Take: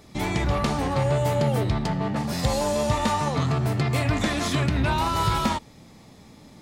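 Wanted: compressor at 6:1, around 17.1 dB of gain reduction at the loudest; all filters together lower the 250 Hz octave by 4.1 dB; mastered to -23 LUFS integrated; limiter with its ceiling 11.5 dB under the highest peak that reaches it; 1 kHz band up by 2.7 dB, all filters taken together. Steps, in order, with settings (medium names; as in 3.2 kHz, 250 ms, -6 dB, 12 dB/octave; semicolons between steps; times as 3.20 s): peaking EQ 250 Hz -6 dB; peaking EQ 1 kHz +3.5 dB; compression 6:1, threshold -38 dBFS; trim +23.5 dB; peak limiter -14.5 dBFS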